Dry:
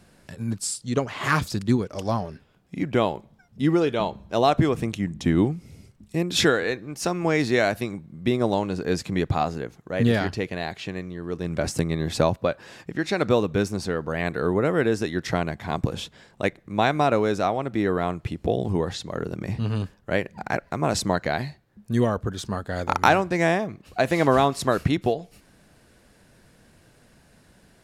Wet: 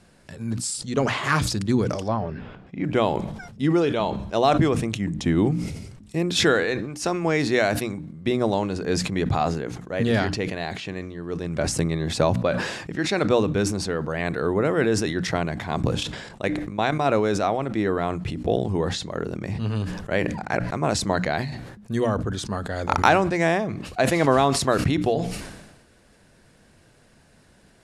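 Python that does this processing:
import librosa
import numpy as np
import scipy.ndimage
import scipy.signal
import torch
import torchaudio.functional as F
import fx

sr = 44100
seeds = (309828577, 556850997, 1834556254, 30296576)

y = fx.lowpass(x, sr, hz=2600.0, slope=12, at=(2.08, 2.84))
y = fx.level_steps(y, sr, step_db=11, at=(15.87, 17.06))
y = scipy.signal.sosfilt(scipy.signal.butter(4, 11000.0, 'lowpass', fs=sr, output='sos'), y)
y = fx.hum_notches(y, sr, base_hz=60, count=5)
y = fx.sustainer(y, sr, db_per_s=49.0)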